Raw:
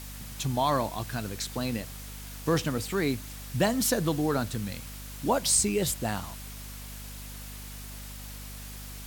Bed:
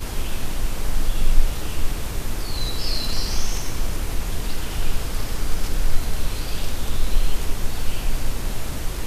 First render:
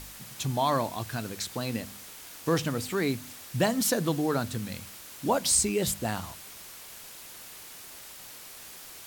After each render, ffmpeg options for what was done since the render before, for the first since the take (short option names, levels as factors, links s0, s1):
-af "bandreject=f=50:t=h:w=4,bandreject=f=100:t=h:w=4,bandreject=f=150:t=h:w=4,bandreject=f=200:t=h:w=4,bandreject=f=250:t=h:w=4"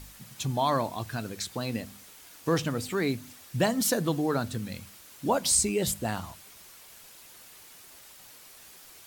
-af "afftdn=nr=6:nf=-46"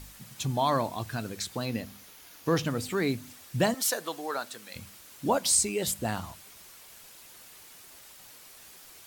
-filter_complex "[0:a]asettb=1/sr,asplit=3[s0][s1][s2];[s0]atrim=end=1.654[s3];[s1]atrim=start=1.65:end=2.66,asetpts=PTS-STARTPTS,afade=t=in:d=0.004:c=qsin,afade=t=out:st=1.006:d=0.004:c=qsin,equalizer=f=8100:w=6.5:g=-11[s4];[s2]atrim=start=2.656[s5];[s3][s4]acrossfade=d=0.004:c1=hsin:c2=qsin[s6];[s6][s5]acrossfade=d=0.004:c1=qsin:c2=hsin,asettb=1/sr,asplit=3[s7][s8][s9];[s7]atrim=end=3.744[s10];[s8]atrim=start=3.74:end=4.76,asetpts=PTS-STARTPTS,afade=t=in:d=0.004:c=qsin,afade=t=out:st=1.016:d=0.004:c=qsin,highpass=640[s11];[s9]atrim=start=4.756[s12];[s10][s11]acrossfade=d=0.004:c1=hsin:c2=qsin[s13];[s13][s12]acrossfade=d=0.004:c1=qsin:c2=hsin,asettb=1/sr,asplit=3[s14][s15][s16];[s14]atrim=end=5.384[s17];[s15]atrim=start=5.38:end=5.99,asetpts=PTS-STARTPTS,afade=t=in:d=0.004:c=qsin,afade=t=out:st=0.606:d=0.004:c=qsin,lowshelf=f=280:g=-8[s18];[s16]atrim=start=5.986[s19];[s17][s18]acrossfade=d=0.004:c1=hsin:c2=qsin[s20];[s20][s19]acrossfade=d=0.004:c1=qsin:c2=hsin"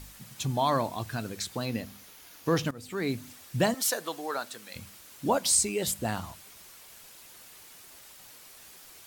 -filter_complex "[0:a]asplit=2[s0][s1];[s0]atrim=end=2.71,asetpts=PTS-STARTPTS,afade=t=out:st=2.706:d=0.004:c=hsin:silence=0.112202[s2];[s1]atrim=start=2.71,asetpts=PTS-STARTPTS,afade=t=in:d=0.48:silence=0.112202[s3];[s2][s3]concat=n=2:v=0:a=1"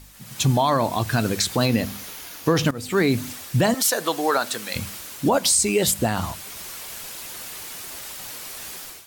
-af "dynaudnorm=f=120:g=5:m=5.62,alimiter=limit=0.335:level=0:latency=1:release=87"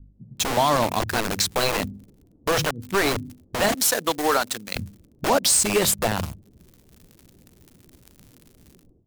-filter_complex "[0:a]acrossover=split=350[s0][s1];[s0]aeval=exprs='(mod(10.6*val(0)+1,2)-1)/10.6':c=same[s2];[s1]acrusher=bits=3:mix=0:aa=0.5[s3];[s2][s3]amix=inputs=2:normalize=0"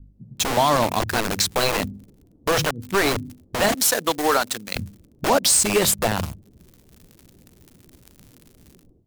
-af "volume=1.19"